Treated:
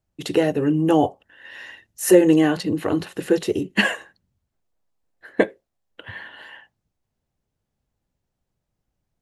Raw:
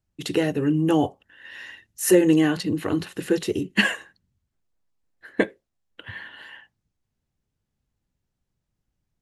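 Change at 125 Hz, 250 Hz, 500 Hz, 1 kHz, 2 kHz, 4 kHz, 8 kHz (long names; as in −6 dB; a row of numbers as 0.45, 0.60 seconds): +0.5, +2.0, +4.0, +5.0, +1.0, +0.5, 0.0 decibels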